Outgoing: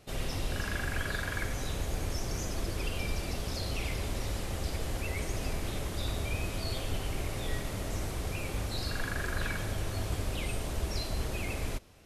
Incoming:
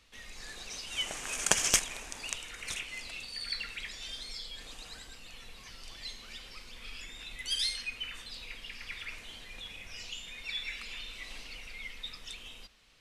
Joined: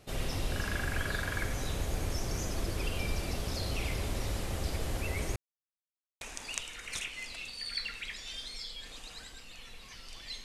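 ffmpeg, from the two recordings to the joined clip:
-filter_complex "[0:a]apad=whole_dur=10.44,atrim=end=10.44,asplit=2[s0][s1];[s0]atrim=end=5.36,asetpts=PTS-STARTPTS,afade=t=out:st=5.356:d=0.004:c=hsin[s2];[s1]atrim=start=5.36:end=6.21,asetpts=PTS-STARTPTS,volume=0[s3];[1:a]atrim=start=1.96:end=6.19,asetpts=PTS-STARTPTS,afade=t=in:d=0.004:c=hsin[s4];[s2][s3][s4]concat=n=3:v=0:a=1"

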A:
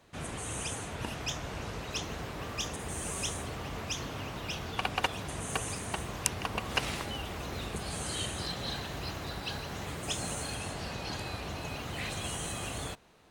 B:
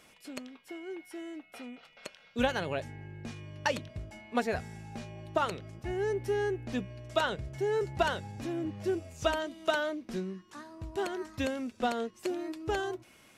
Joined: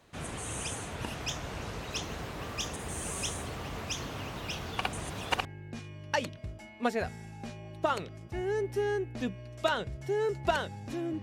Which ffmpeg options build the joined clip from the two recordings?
-filter_complex "[0:a]apad=whole_dur=11.22,atrim=end=11.22,asplit=2[s0][s1];[s0]atrim=end=4.932[s2];[s1]atrim=start=4.928:end=5.452,asetpts=PTS-STARTPTS,areverse[s3];[1:a]atrim=start=2.968:end=8.74[s4];[s2][s3]acrossfade=d=0.004:c1=hsin:c2=hsin[s5];[s5][s4]acrossfade=d=0.004:c1=hsin:c2=hsin"

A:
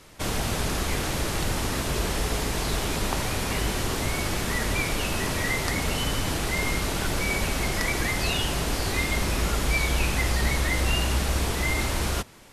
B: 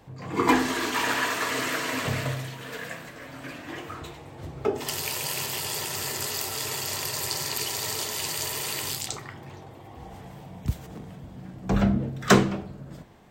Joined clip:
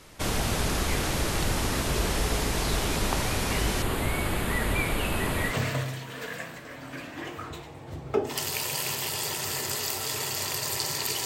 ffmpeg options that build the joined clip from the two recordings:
-filter_complex "[0:a]asettb=1/sr,asplit=3[s0][s1][s2];[s0]atrim=end=3.824[s3];[s1]atrim=start=3.82:end=5.55,asetpts=PTS-STARTPTS,afade=t=in:d=0.004:c=qsin,afade=t=out:st=1.726:d=0.004:c=qsin,equalizer=f=5700:t=o:w=0.61:g=-15[s4];[s2]atrim=start=5.546[s5];[s3][s4]acrossfade=d=0.004:c1=hsin:c2=qsin[s6];[s6][s5]acrossfade=d=0.004:c1=qsin:c2=hsin,apad=whole_dur=11.25,atrim=end=11.25,atrim=end=5.55,asetpts=PTS-STARTPTS[s7];[1:a]atrim=start=1.98:end=7.76,asetpts=PTS-STARTPTS[s8];[s7][s8]acrossfade=d=0.08:c1=tri:c2=tri"

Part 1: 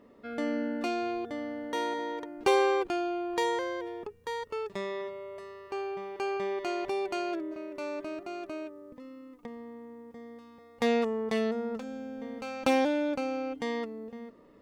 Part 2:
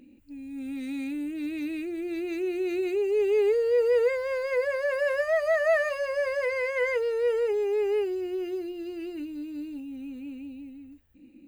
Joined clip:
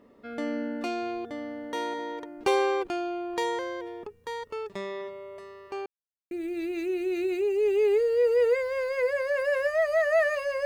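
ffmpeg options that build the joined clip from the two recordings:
-filter_complex "[0:a]apad=whole_dur=10.65,atrim=end=10.65,asplit=2[s0][s1];[s0]atrim=end=5.86,asetpts=PTS-STARTPTS,afade=t=out:st=5.856:d=0.004:c=hsin[s2];[s1]atrim=start=5.86:end=6.31,asetpts=PTS-STARTPTS,volume=0[s3];[1:a]atrim=start=1.85:end=6.19,asetpts=PTS-STARTPTS,afade=t=in:d=0.004:c=hsin[s4];[s2][s3][s4]concat=n=3:v=0:a=1"

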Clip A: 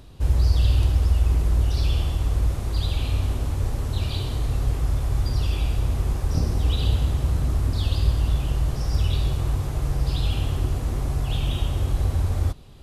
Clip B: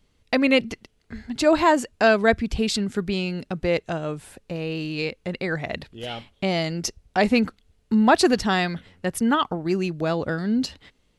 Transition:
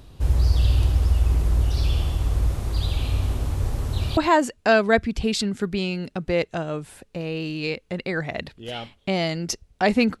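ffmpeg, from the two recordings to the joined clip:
-filter_complex "[0:a]apad=whole_dur=10.2,atrim=end=10.2,atrim=end=4.172[s0];[1:a]atrim=start=1.518:end=7.55[s1];[s0][s1]acrossfade=d=0.004:c1=hsin:c2=hsin"

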